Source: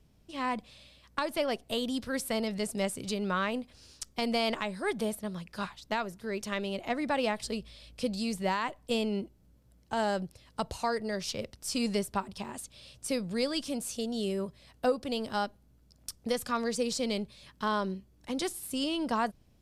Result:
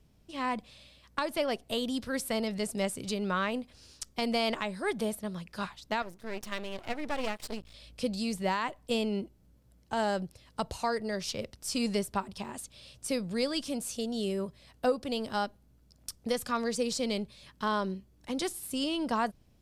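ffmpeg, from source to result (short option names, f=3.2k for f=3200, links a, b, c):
-filter_complex "[0:a]asettb=1/sr,asplit=3[a][b][c];[a]atrim=end=6.024[d];[b]atrim=start=6.02:end=7.74,asetpts=PTS-STARTPTS,afade=t=in:d=0.004:c=qsin,afade=t=out:st=1.716:d=0.004:c=qsin,aeval=exprs='max(val(0),0)':c=same[e];[c]atrim=start=7.736[f];[d][e]acrossfade=d=0.004:c1=hsin:c2=qsin[g];[g][f]acrossfade=d=0.004:c1=qsin:c2=hsin"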